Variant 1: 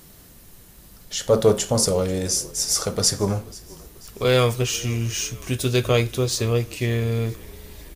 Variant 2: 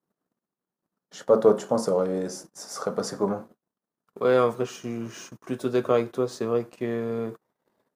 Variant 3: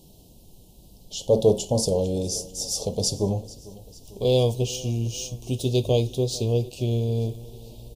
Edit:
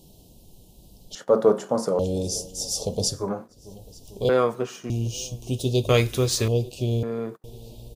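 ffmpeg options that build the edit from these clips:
-filter_complex "[1:a]asplit=4[a][b][c][d];[2:a]asplit=6[e][f][g][h][i][j];[e]atrim=end=1.152[k];[a]atrim=start=1.148:end=1.992[l];[f]atrim=start=1.988:end=3.31[m];[b]atrim=start=3.07:end=3.72[n];[g]atrim=start=3.48:end=4.292[o];[c]atrim=start=4.288:end=4.902[p];[h]atrim=start=4.898:end=5.892[q];[0:a]atrim=start=5.888:end=6.482[r];[i]atrim=start=6.478:end=7.032[s];[d]atrim=start=7.028:end=7.442[t];[j]atrim=start=7.438[u];[k][l]acrossfade=d=0.004:c1=hsin:c2=hsin[v];[v][m]acrossfade=d=0.004:c1=hsin:c2=hsin[w];[w][n]acrossfade=d=0.24:c1=tri:c2=tri[x];[x][o]acrossfade=d=0.24:c1=tri:c2=tri[y];[y][p]acrossfade=d=0.004:c1=hsin:c2=hsin[z];[z][q]acrossfade=d=0.004:c1=hsin:c2=hsin[aa];[aa][r]acrossfade=d=0.004:c1=hsin:c2=hsin[ab];[ab][s]acrossfade=d=0.004:c1=hsin:c2=hsin[ac];[ac][t]acrossfade=d=0.004:c1=hsin:c2=hsin[ad];[ad][u]acrossfade=d=0.004:c1=hsin:c2=hsin"

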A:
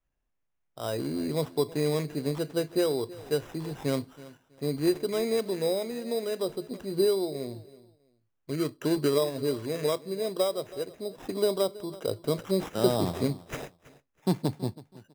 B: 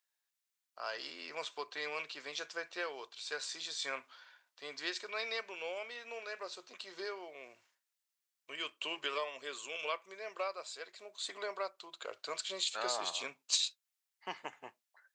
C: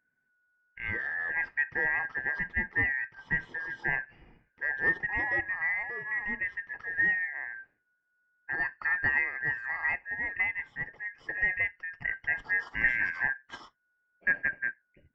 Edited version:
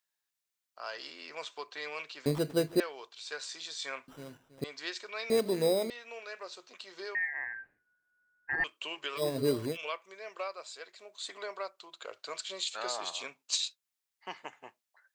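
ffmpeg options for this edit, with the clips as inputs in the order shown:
-filter_complex "[0:a]asplit=4[a][b][c][d];[1:a]asplit=6[e][f][g][h][i][j];[e]atrim=end=2.262[k];[a]atrim=start=2.258:end=2.802[l];[f]atrim=start=2.798:end=4.082[m];[b]atrim=start=4.078:end=4.642[n];[g]atrim=start=4.638:end=5.302[o];[c]atrim=start=5.298:end=5.902[p];[h]atrim=start=5.898:end=7.152[q];[2:a]atrim=start=7.148:end=8.642[r];[i]atrim=start=8.638:end=9.26[s];[d]atrim=start=9.16:end=9.78[t];[j]atrim=start=9.68[u];[k][l]acrossfade=d=0.004:c1=hsin:c2=hsin[v];[v][m]acrossfade=d=0.004:c1=hsin:c2=hsin[w];[w][n]acrossfade=d=0.004:c1=hsin:c2=hsin[x];[x][o]acrossfade=d=0.004:c1=hsin:c2=hsin[y];[y][p]acrossfade=d=0.004:c1=hsin:c2=hsin[z];[z][q]acrossfade=d=0.004:c1=hsin:c2=hsin[aa];[aa][r]acrossfade=d=0.004:c1=hsin:c2=hsin[ab];[ab][s]acrossfade=d=0.004:c1=hsin:c2=hsin[ac];[ac][t]acrossfade=d=0.1:c1=tri:c2=tri[ad];[ad][u]acrossfade=d=0.1:c1=tri:c2=tri"

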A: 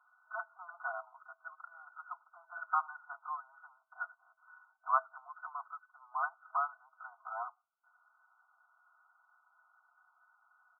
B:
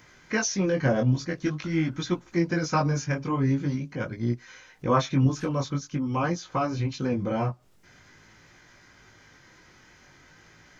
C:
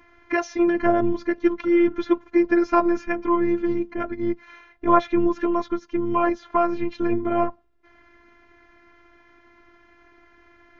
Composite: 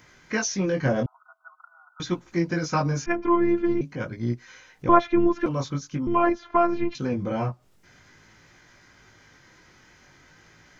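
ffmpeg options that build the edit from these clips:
-filter_complex "[2:a]asplit=3[a][b][c];[1:a]asplit=5[d][e][f][g][h];[d]atrim=end=1.062[i];[0:a]atrim=start=1.058:end=2.002[j];[e]atrim=start=1.998:end=3.062[k];[a]atrim=start=3.058:end=3.812[l];[f]atrim=start=3.808:end=4.892[m];[b]atrim=start=4.888:end=5.462[n];[g]atrim=start=5.458:end=6.072[o];[c]atrim=start=6.068:end=6.952[p];[h]atrim=start=6.948[q];[i][j]acrossfade=d=0.004:c1=hsin:c2=hsin[r];[r][k]acrossfade=d=0.004:c1=hsin:c2=hsin[s];[s][l]acrossfade=d=0.004:c1=hsin:c2=hsin[t];[t][m]acrossfade=d=0.004:c1=hsin:c2=hsin[u];[u][n]acrossfade=d=0.004:c1=hsin:c2=hsin[v];[v][o]acrossfade=d=0.004:c1=hsin:c2=hsin[w];[w][p]acrossfade=d=0.004:c1=hsin:c2=hsin[x];[x][q]acrossfade=d=0.004:c1=hsin:c2=hsin"

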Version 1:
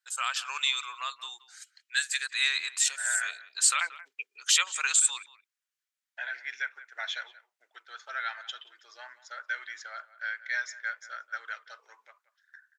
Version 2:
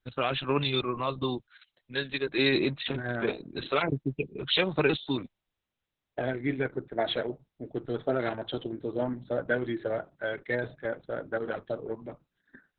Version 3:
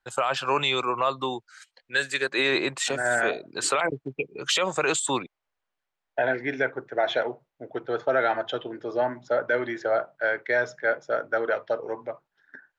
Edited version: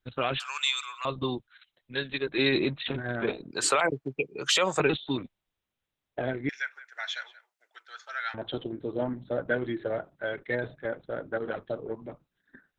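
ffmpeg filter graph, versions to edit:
-filter_complex "[0:a]asplit=2[a][b];[1:a]asplit=4[c][d][e][f];[c]atrim=end=0.402[g];[a]atrim=start=0.398:end=1.052[h];[d]atrim=start=1.048:end=3.512[i];[2:a]atrim=start=3.508:end=4.802[j];[e]atrim=start=4.798:end=6.492[k];[b]atrim=start=6.488:end=8.342[l];[f]atrim=start=8.338[m];[g][h]acrossfade=d=0.004:c1=hsin:c2=hsin[n];[n][i]acrossfade=d=0.004:c1=hsin:c2=hsin[o];[o][j]acrossfade=d=0.004:c1=hsin:c2=hsin[p];[p][k]acrossfade=d=0.004:c1=hsin:c2=hsin[q];[q][l]acrossfade=d=0.004:c1=hsin:c2=hsin[r];[r][m]acrossfade=d=0.004:c1=hsin:c2=hsin"

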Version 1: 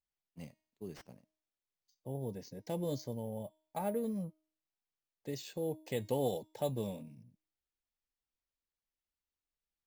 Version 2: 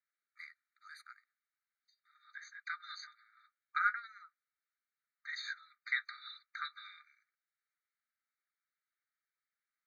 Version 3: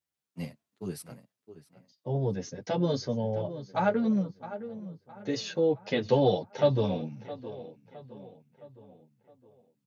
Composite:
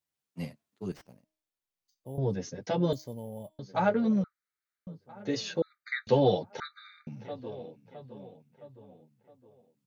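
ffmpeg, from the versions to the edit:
-filter_complex "[0:a]asplit=2[a][b];[1:a]asplit=3[c][d][e];[2:a]asplit=6[f][g][h][i][j][k];[f]atrim=end=0.922[l];[a]atrim=start=0.918:end=2.182[m];[g]atrim=start=2.178:end=2.932[n];[b]atrim=start=2.928:end=3.592[o];[h]atrim=start=3.588:end=4.242[p];[c]atrim=start=4.238:end=4.872[q];[i]atrim=start=4.868:end=5.622[r];[d]atrim=start=5.618:end=6.072[s];[j]atrim=start=6.068:end=6.602[t];[e]atrim=start=6.598:end=7.072[u];[k]atrim=start=7.068[v];[l][m]acrossfade=d=0.004:c1=hsin:c2=hsin[w];[w][n]acrossfade=d=0.004:c1=hsin:c2=hsin[x];[x][o]acrossfade=d=0.004:c1=hsin:c2=hsin[y];[y][p]acrossfade=d=0.004:c1=hsin:c2=hsin[z];[z][q]acrossfade=d=0.004:c1=hsin:c2=hsin[aa];[aa][r]acrossfade=d=0.004:c1=hsin:c2=hsin[ab];[ab][s]acrossfade=d=0.004:c1=hsin:c2=hsin[ac];[ac][t]acrossfade=d=0.004:c1=hsin:c2=hsin[ad];[ad][u]acrossfade=d=0.004:c1=hsin:c2=hsin[ae];[ae][v]acrossfade=d=0.004:c1=hsin:c2=hsin"

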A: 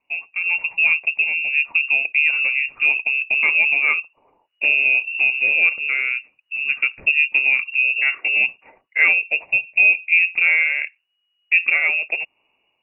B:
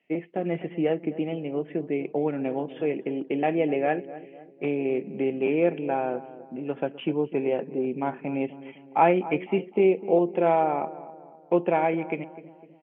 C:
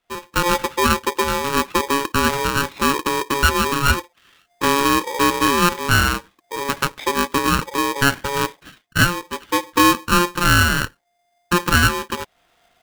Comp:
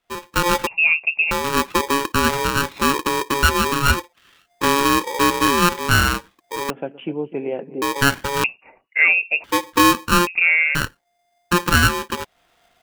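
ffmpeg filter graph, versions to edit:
-filter_complex "[0:a]asplit=3[a][b][c];[2:a]asplit=5[d][e][f][g][h];[d]atrim=end=0.672[i];[a]atrim=start=0.668:end=1.312[j];[e]atrim=start=1.308:end=6.702[k];[1:a]atrim=start=6.698:end=7.822[l];[f]atrim=start=7.818:end=8.442[m];[b]atrim=start=8.438:end=9.442[n];[g]atrim=start=9.438:end=10.272[o];[c]atrim=start=10.268:end=10.752[p];[h]atrim=start=10.748[q];[i][j]acrossfade=d=0.004:c1=hsin:c2=hsin[r];[r][k]acrossfade=d=0.004:c1=hsin:c2=hsin[s];[s][l]acrossfade=d=0.004:c1=hsin:c2=hsin[t];[t][m]acrossfade=d=0.004:c1=hsin:c2=hsin[u];[u][n]acrossfade=d=0.004:c1=hsin:c2=hsin[v];[v][o]acrossfade=d=0.004:c1=hsin:c2=hsin[w];[w][p]acrossfade=d=0.004:c1=hsin:c2=hsin[x];[x][q]acrossfade=d=0.004:c1=hsin:c2=hsin"

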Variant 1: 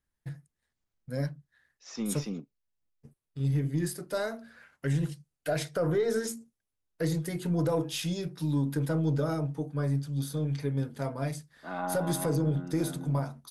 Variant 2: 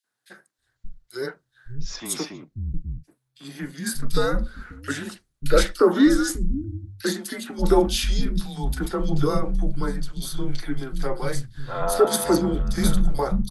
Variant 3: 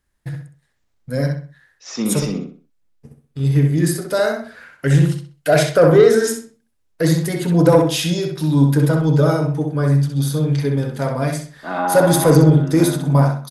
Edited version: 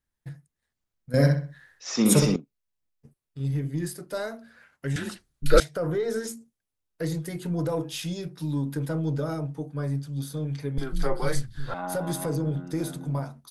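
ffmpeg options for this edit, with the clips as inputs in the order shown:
-filter_complex "[1:a]asplit=2[a][b];[0:a]asplit=4[c][d][e][f];[c]atrim=end=1.142[g];[2:a]atrim=start=1.138:end=2.362[h];[d]atrim=start=2.358:end=4.962[i];[a]atrim=start=4.958:end=5.602[j];[e]atrim=start=5.598:end=10.782[k];[b]atrim=start=10.778:end=11.742[l];[f]atrim=start=11.738[m];[g][h]acrossfade=d=0.004:c1=hsin:c2=hsin[n];[n][i]acrossfade=d=0.004:c1=hsin:c2=hsin[o];[o][j]acrossfade=d=0.004:c1=hsin:c2=hsin[p];[p][k]acrossfade=d=0.004:c1=hsin:c2=hsin[q];[q][l]acrossfade=d=0.004:c1=hsin:c2=hsin[r];[r][m]acrossfade=d=0.004:c1=hsin:c2=hsin"

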